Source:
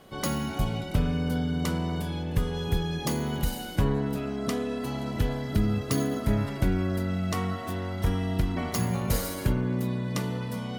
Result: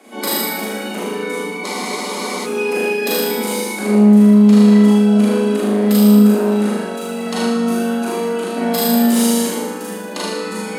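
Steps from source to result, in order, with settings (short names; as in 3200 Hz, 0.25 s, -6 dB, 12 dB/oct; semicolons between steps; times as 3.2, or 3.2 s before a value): on a send: flutter echo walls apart 6.6 m, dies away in 1 s; on the sum: formant shift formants -5 st; in parallel at -4 dB: sine folder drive 6 dB, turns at -12.5 dBFS; on the sum: steep high-pass 200 Hz 96 dB/oct; high shelf 11000 Hz +5.5 dB; Schroeder reverb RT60 0.54 s, combs from 30 ms, DRR -2.5 dB; spectral freeze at 1.67, 0.77 s; gain -3 dB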